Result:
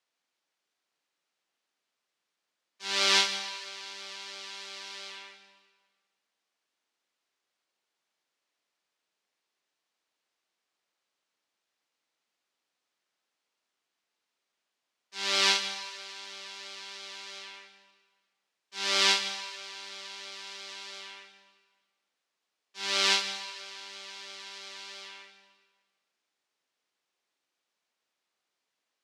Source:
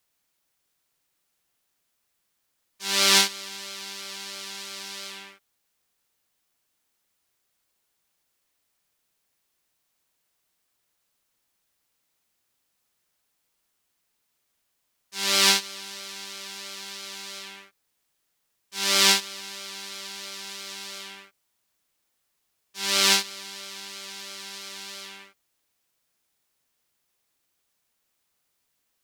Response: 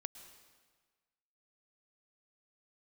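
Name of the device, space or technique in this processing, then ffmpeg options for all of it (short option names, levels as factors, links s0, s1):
supermarket ceiling speaker: -filter_complex "[0:a]highpass=270,lowpass=5300[s0];[1:a]atrim=start_sample=2205[s1];[s0][s1]afir=irnorm=-1:irlink=0"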